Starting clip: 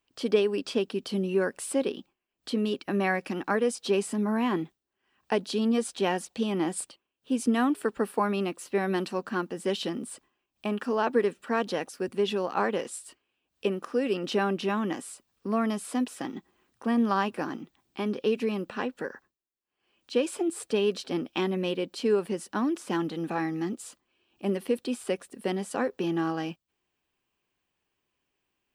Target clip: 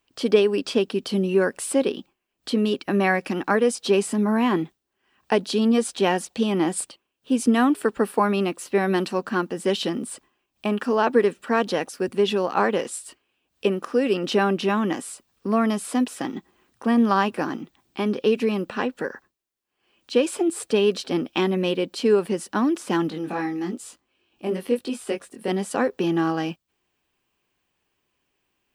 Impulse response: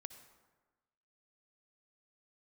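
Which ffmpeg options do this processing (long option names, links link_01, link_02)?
-filter_complex "[0:a]asplit=3[link_01][link_02][link_03];[link_01]afade=type=out:start_time=23.09:duration=0.02[link_04];[link_02]flanger=delay=18.5:depth=4.1:speed=1,afade=type=in:start_time=23.09:duration=0.02,afade=type=out:start_time=25.49:duration=0.02[link_05];[link_03]afade=type=in:start_time=25.49:duration=0.02[link_06];[link_04][link_05][link_06]amix=inputs=3:normalize=0,volume=6dB"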